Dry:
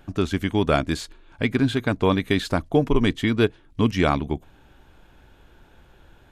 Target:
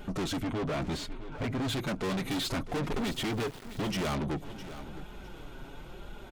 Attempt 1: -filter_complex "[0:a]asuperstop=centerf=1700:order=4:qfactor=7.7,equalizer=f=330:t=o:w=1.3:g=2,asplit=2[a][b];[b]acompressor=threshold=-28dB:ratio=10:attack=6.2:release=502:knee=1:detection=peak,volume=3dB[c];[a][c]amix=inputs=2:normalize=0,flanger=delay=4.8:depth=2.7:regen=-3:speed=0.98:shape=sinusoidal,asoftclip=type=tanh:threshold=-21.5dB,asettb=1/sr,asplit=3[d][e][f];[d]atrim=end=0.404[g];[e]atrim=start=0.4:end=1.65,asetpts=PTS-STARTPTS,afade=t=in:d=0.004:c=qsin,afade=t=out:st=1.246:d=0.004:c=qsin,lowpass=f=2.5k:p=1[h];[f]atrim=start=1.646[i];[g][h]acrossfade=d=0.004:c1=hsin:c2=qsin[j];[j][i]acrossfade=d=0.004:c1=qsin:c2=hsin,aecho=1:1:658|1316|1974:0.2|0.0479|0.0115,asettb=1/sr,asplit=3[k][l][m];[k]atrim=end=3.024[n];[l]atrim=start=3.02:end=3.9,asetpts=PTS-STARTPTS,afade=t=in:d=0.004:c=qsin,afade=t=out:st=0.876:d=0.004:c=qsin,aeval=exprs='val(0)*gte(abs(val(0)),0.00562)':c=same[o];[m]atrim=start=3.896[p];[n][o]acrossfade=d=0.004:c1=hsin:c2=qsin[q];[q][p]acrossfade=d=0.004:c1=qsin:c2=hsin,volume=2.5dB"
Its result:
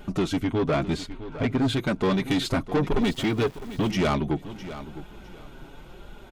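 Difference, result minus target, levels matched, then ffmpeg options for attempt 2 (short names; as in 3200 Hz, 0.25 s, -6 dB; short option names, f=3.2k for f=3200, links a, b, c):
compressor: peak gain reduction +6.5 dB; soft clip: distortion -6 dB
-filter_complex "[0:a]asuperstop=centerf=1700:order=4:qfactor=7.7,equalizer=f=330:t=o:w=1.3:g=2,asplit=2[a][b];[b]acompressor=threshold=-21dB:ratio=10:attack=6.2:release=502:knee=1:detection=peak,volume=3dB[c];[a][c]amix=inputs=2:normalize=0,flanger=delay=4.8:depth=2.7:regen=-3:speed=0.98:shape=sinusoidal,asoftclip=type=tanh:threshold=-32.5dB,asettb=1/sr,asplit=3[d][e][f];[d]atrim=end=0.404[g];[e]atrim=start=0.4:end=1.65,asetpts=PTS-STARTPTS,afade=t=in:d=0.004:c=qsin,afade=t=out:st=1.246:d=0.004:c=qsin,lowpass=f=2.5k:p=1[h];[f]atrim=start=1.646[i];[g][h]acrossfade=d=0.004:c1=hsin:c2=qsin[j];[j][i]acrossfade=d=0.004:c1=qsin:c2=hsin,aecho=1:1:658|1316|1974:0.2|0.0479|0.0115,asettb=1/sr,asplit=3[k][l][m];[k]atrim=end=3.024[n];[l]atrim=start=3.02:end=3.9,asetpts=PTS-STARTPTS,afade=t=in:d=0.004:c=qsin,afade=t=out:st=0.876:d=0.004:c=qsin,aeval=exprs='val(0)*gte(abs(val(0)),0.00562)':c=same[o];[m]atrim=start=3.896[p];[n][o]acrossfade=d=0.004:c1=hsin:c2=qsin[q];[q][p]acrossfade=d=0.004:c1=qsin:c2=hsin,volume=2.5dB"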